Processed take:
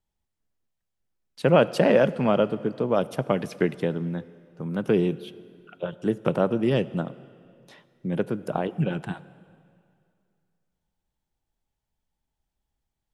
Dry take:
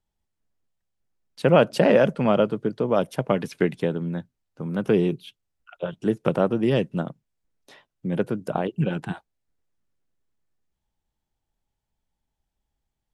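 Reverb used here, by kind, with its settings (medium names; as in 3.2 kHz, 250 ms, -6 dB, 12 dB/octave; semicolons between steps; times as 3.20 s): plate-style reverb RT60 2.4 s, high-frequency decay 0.9×, DRR 17 dB; trim -1.5 dB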